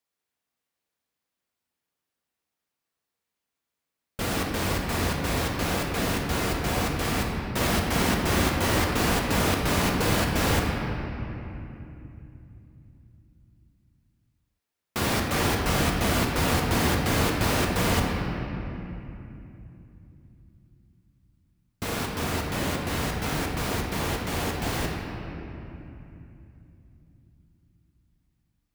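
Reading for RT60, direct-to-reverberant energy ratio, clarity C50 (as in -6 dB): 3.0 s, -0.5 dB, 1.5 dB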